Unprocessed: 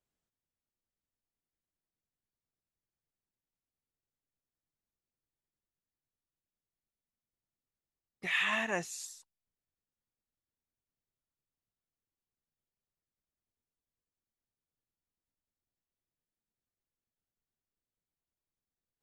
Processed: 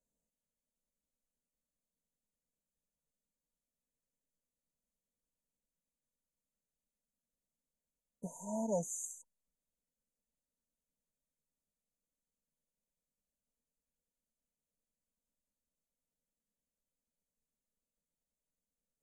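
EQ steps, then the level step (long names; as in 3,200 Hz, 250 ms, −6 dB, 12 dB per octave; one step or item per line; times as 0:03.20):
linear-phase brick-wall band-stop 980–6,000 Hz
low-pass filter 10,000 Hz
phaser with its sweep stopped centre 530 Hz, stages 8
+4.5 dB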